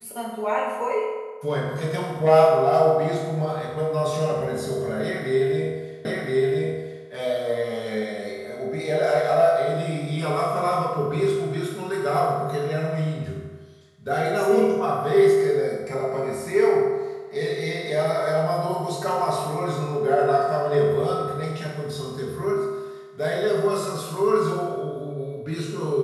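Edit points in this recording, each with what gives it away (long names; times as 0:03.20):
0:06.05: the same again, the last 1.02 s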